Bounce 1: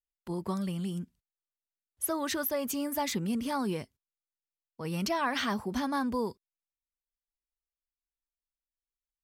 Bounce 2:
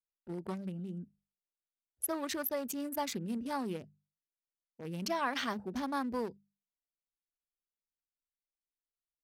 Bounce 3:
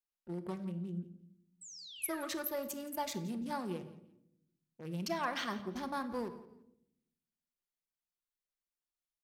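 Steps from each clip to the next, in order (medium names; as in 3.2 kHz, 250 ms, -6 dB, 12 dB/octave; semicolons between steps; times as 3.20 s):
local Wiener filter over 41 samples; bass shelf 170 Hz -8 dB; hum notches 50/100/150/200 Hz; trim -2 dB
painted sound fall, 1.61–2.29 s, 1.2–8.2 kHz -48 dBFS; feedback delay 171 ms, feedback 28%, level -19 dB; on a send at -7.5 dB: reverberation RT60 0.80 s, pre-delay 6 ms; on the sum: trim -3 dB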